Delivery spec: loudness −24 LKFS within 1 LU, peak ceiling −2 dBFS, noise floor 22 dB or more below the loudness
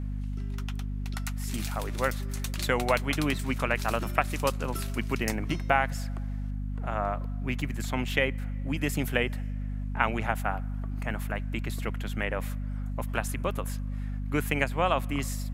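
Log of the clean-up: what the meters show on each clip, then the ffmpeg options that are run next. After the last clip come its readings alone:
mains hum 50 Hz; hum harmonics up to 250 Hz; level of the hum −30 dBFS; integrated loudness −30.5 LKFS; sample peak −5.5 dBFS; target loudness −24.0 LKFS
→ -af "bandreject=frequency=50:width_type=h:width=6,bandreject=frequency=100:width_type=h:width=6,bandreject=frequency=150:width_type=h:width=6,bandreject=frequency=200:width_type=h:width=6,bandreject=frequency=250:width_type=h:width=6"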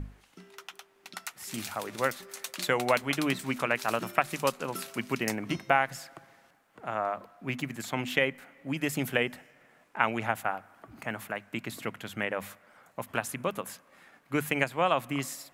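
mains hum none found; integrated loudness −31.5 LKFS; sample peak −5.5 dBFS; target loudness −24.0 LKFS
→ -af "volume=7.5dB,alimiter=limit=-2dB:level=0:latency=1"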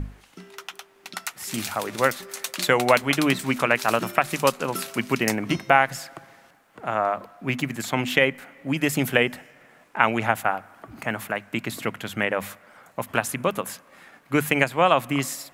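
integrated loudness −24.0 LKFS; sample peak −2.0 dBFS; background noise floor −56 dBFS

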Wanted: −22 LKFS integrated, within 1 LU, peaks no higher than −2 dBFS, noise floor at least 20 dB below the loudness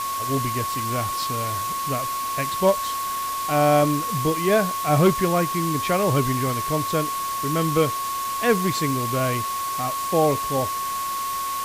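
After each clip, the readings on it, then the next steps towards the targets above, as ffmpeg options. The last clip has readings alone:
interfering tone 1,100 Hz; level of the tone −25 dBFS; background noise floor −27 dBFS; target noise floor −43 dBFS; integrated loudness −22.5 LKFS; sample peak −7.5 dBFS; target loudness −22.0 LKFS
→ -af "bandreject=frequency=1100:width=30"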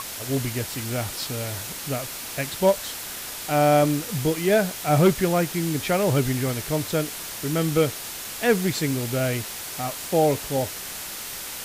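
interfering tone none found; background noise floor −35 dBFS; target noise floor −45 dBFS
→ -af "afftdn=noise_reduction=10:noise_floor=-35"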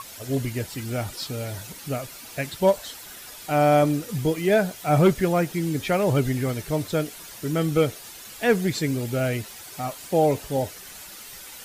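background noise floor −42 dBFS; target noise floor −45 dBFS
→ -af "afftdn=noise_reduction=6:noise_floor=-42"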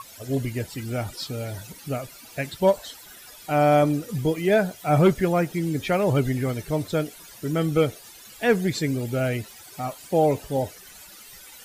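background noise floor −46 dBFS; integrated loudness −24.5 LKFS; sample peak −9.0 dBFS; target loudness −22.0 LKFS
→ -af "volume=2.5dB"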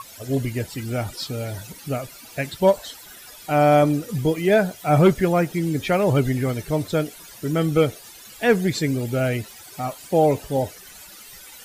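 integrated loudness −22.0 LKFS; sample peak −6.5 dBFS; background noise floor −44 dBFS

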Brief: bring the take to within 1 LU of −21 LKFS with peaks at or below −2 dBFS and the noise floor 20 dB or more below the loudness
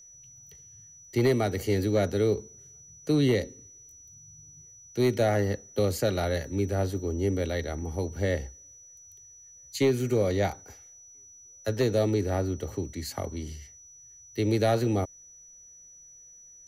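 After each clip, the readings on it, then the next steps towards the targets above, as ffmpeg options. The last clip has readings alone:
interfering tone 5,900 Hz; level of the tone −49 dBFS; integrated loudness −28.0 LKFS; sample peak −15.5 dBFS; target loudness −21.0 LKFS
→ -af "bandreject=frequency=5900:width=30"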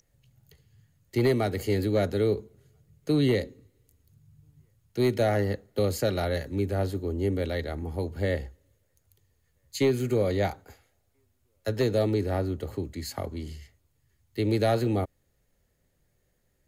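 interfering tone none found; integrated loudness −28.0 LKFS; sample peak −15.5 dBFS; target loudness −21.0 LKFS
→ -af "volume=7dB"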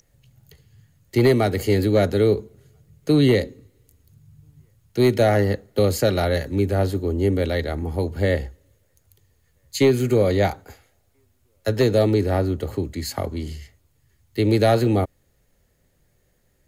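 integrated loudness −21.0 LKFS; sample peak −8.5 dBFS; background noise floor −65 dBFS

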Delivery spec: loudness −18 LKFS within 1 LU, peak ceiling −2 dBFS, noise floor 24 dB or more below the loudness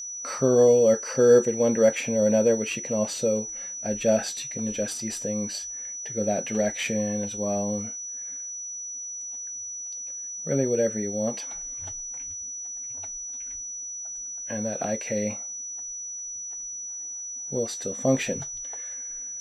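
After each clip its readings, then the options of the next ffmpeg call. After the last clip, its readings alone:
interfering tone 5,900 Hz; level of the tone −33 dBFS; integrated loudness −26.5 LKFS; sample peak −7.0 dBFS; target loudness −18.0 LKFS
→ -af "bandreject=frequency=5900:width=30"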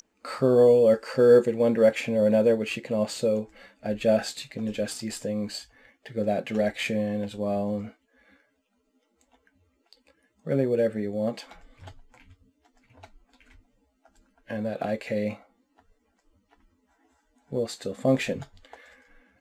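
interfering tone none found; integrated loudness −25.5 LKFS; sample peak −7.5 dBFS; target loudness −18.0 LKFS
→ -af "volume=7.5dB,alimiter=limit=-2dB:level=0:latency=1"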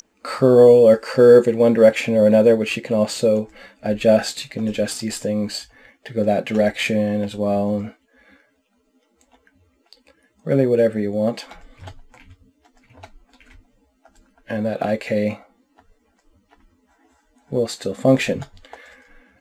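integrated loudness −18.0 LKFS; sample peak −2.0 dBFS; background noise floor −65 dBFS

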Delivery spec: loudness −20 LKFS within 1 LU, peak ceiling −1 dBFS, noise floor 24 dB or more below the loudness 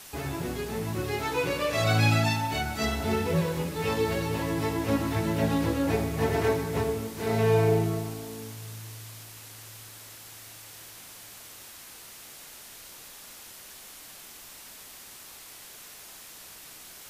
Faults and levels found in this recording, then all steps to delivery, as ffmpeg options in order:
background noise floor −47 dBFS; target noise floor −52 dBFS; integrated loudness −27.5 LKFS; sample peak −11.5 dBFS; target loudness −20.0 LKFS
→ -af "afftdn=noise_reduction=6:noise_floor=-47"
-af "volume=7.5dB"

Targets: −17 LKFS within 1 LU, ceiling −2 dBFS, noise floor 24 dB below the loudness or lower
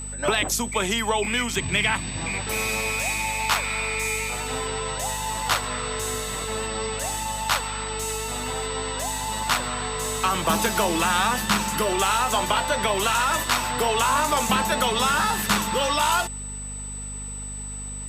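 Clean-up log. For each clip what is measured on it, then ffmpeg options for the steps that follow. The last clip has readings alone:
mains hum 50 Hz; hum harmonics up to 250 Hz; level of the hum −34 dBFS; interfering tone 8,000 Hz; level of the tone −34 dBFS; integrated loudness −24.0 LKFS; sample peak −9.5 dBFS; target loudness −17.0 LKFS
→ -af "bandreject=frequency=50:width_type=h:width=4,bandreject=frequency=100:width_type=h:width=4,bandreject=frequency=150:width_type=h:width=4,bandreject=frequency=200:width_type=h:width=4,bandreject=frequency=250:width_type=h:width=4"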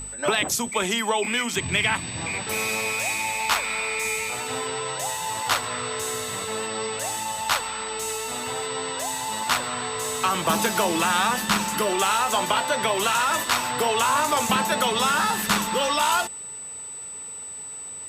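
mains hum none found; interfering tone 8,000 Hz; level of the tone −34 dBFS
→ -af "bandreject=frequency=8000:width=30"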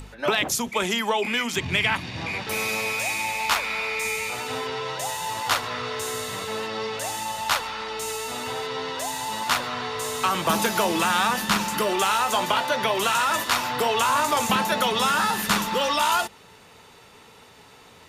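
interfering tone none found; integrated loudness −24.0 LKFS; sample peak −9.5 dBFS; target loudness −17.0 LKFS
→ -af "volume=7dB"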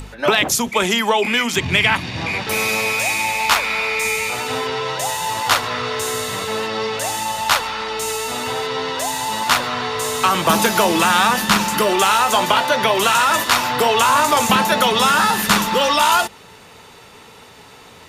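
integrated loudness −17.0 LKFS; sample peak −2.5 dBFS; background noise floor −43 dBFS

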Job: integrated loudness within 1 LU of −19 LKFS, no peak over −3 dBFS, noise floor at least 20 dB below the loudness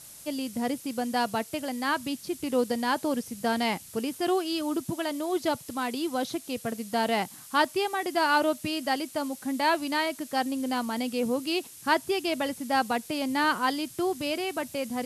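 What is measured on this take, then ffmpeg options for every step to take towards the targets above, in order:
background noise floor −47 dBFS; target noise floor −49 dBFS; integrated loudness −28.5 LKFS; sample peak −11.0 dBFS; target loudness −19.0 LKFS
→ -af "afftdn=noise_reduction=6:noise_floor=-47"
-af "volume=9.5dB,alimiter=limit=-3dB:level=0:latency=1"

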